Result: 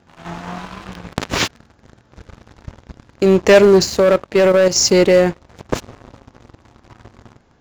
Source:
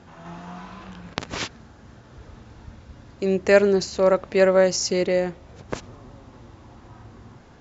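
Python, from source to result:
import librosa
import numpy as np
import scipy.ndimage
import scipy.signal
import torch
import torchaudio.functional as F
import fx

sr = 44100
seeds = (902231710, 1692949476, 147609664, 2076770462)

y = fx.leveller(x, sr, passes=3)
y = fx.level_steps(y, sr, step_db=11, at=(3.99, 4.76))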